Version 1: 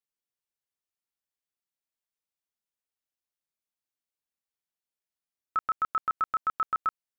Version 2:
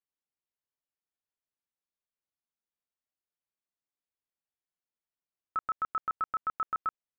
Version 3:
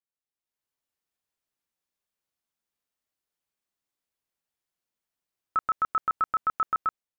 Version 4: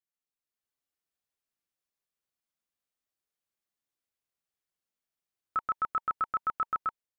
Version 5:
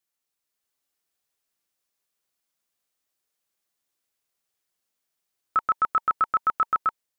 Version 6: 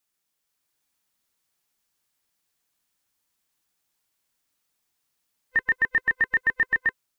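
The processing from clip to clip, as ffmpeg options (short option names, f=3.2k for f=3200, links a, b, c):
-af "lowpass=f=1.7k:p=1,volume=-2dB"
-af "dynaudnorm=f=210:g=5:m=11.5dB,volume=-5.5dB"
-af "bandreject=f=920:w=13,volume=-4dB"
-af "bass=f=250:g=-4,treble=f=4k:g=3,volume=7.5dB"
-filter_complex "[0:a]afftfilt=real='real(if(lt(b,1008),b+24*(1-2*mod(floor(b/24),2)),b),0)':imag='imag(if(lt(b,1008),b+24*(1-2*mod(floor(b/24),2)),b),0)':win_size=2048:overlap=0.75,asplit=2[a][b];[b]alimiter=level_in=2dB:limit=-24dB:level=0:latency=1:release=17,volume=-2dB,volume=2dB[c];[a][c]amix=inputs=2:normalize=0,volume=-2.5dB"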